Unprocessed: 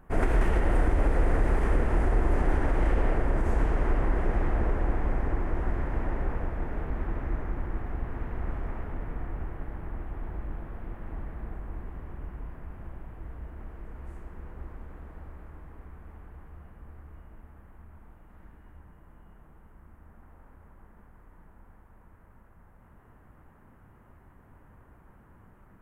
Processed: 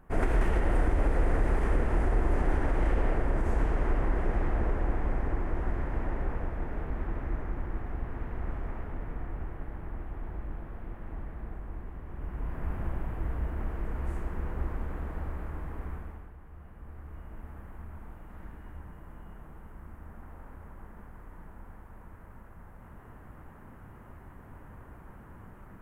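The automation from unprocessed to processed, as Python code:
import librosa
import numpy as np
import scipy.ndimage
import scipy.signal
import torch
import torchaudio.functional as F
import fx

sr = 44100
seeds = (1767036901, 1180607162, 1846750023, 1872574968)

y = fx.gain(x, sr, db=fx.line((12.05, -2.0), (12.68, 8.5), (15.94, 8.5), (16.37, -3.0), (17.5, 6.5)))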